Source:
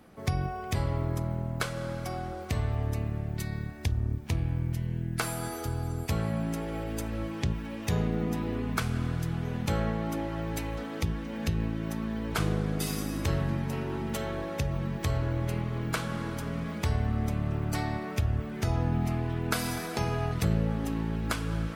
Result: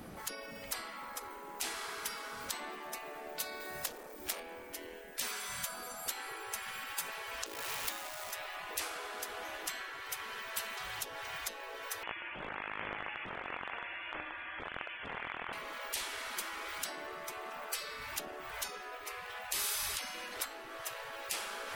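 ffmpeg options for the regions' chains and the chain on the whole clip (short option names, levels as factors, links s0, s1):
-filter_complex "[0:a]asettb=1/sr,asplit=3[s0][s1][s2];[s0]atrim=end=3.604[s3];[s1]atrim=start=3.6:end=4.4,asetpts=PTS-STARTPTS,afade=t=in:d=0.004:c=qsin,afade=t=out:st=0.796:d=0.004:c=qsin,highshelf=f=4700:g=7.5,asoftclip=type=hard:threshold=0.0531,asplit=2[s4][s5];[s5]adelay=19,volume=0.211[s6];[s4][s6]amix=inputs=2:normalize=0,atrim=end_sample=35280[s7];[s2]atrim=start=4.396[s8];[s3][s7]acrossfade=d=0.004:c1=hsin:c2=qsin[s9];[s9][s8]acrossfade=d=0.004:c1=qsin:c2=hsin,asettb=1/sr,asplit=3[s10][s11][s12];[s10]atrim=end=7.464[s13];[s11]atrim=start=7.46:end=8.32,asetpts=PTS-STARTPTS,afade=t=in:d=0.004:c=qsin,afade=t=out:st=0.856:d=0.004:c=qsin,acrusher=bits=8:dc=4:mix=0:aa=0.000001,acompressor=threshold=0.0251:ratio=2.5:attack=3.2:release=140:knee=1:detection=peak[s14];[s12]atrim=start=8.316[s15];[s13][s14]acrossfade=d=0.004:c1=hsin:c2=qsin[s16];[s16][s15]acrossfade=d=0.004:c1=qsin:c2=hsin,asettb=1/sr,asplit=3[s17][s18][s19];[s17]atrim=end=12.034[s20];[s18]atrim=start=12.03:end=15.53,asetpts=PTS-STARTPTS,afade=t=in:d=0.004:c=qsin,afade=t=out:st=3.496:d=0.004:c=qsin,aeval=exprs='(mod(14.1*val(0)+1,2)-1)/14.1':c=same,lowpass=f=2900:t=q:w=0.5098,lowpass=f=2900:t=q:w=0.6013,lowpass=f=2900:t=q:w=0.9,lowpass=f=2900:t=q:w=2.563,afreqshift=-3400[s21];[s19]atrim=start=15.526[s22];[s20][s21]acrossfade=d=0.004:c1=hsin:c2=qsin[s23];[s23][s22]acrossfade=d=0.004:c1=qsin:c2=hsin,highshelf=f=7600:g=5.5,acompressor=threshold=0.0316:ratio=12,afftfilt=real='re*lt(hypot(re,im),0.02)':imag='im*lt(hypot(re,im),0.02)':win_size=1024:overlap=0.75,volume=2.11"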